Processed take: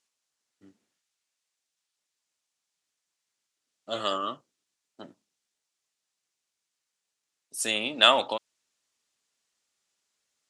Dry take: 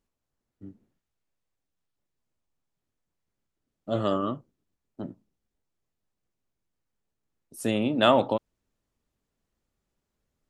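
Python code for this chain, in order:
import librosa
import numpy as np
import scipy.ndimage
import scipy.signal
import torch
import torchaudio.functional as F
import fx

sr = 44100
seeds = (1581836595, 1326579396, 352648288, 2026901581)

y = fx.weighting(x, sr, curve='ITU-R 468')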